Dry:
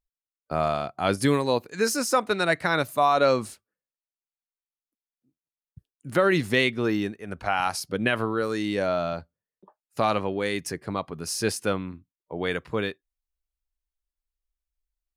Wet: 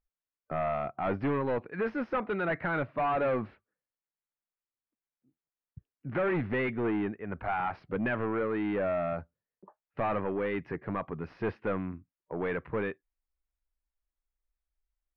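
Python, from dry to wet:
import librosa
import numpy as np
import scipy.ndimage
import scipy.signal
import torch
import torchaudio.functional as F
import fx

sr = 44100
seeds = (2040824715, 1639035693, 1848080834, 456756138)

y = 10.0 ** (-25.5 / 20.0) * np.tanh(x / 10.0 ** (-25.5 / 20.0))
y = scipy.signal.sosfilt(scipy.signal.cheby2(4, 60, 7100.0, 'lowpass', fs=sr, output='sos'), y)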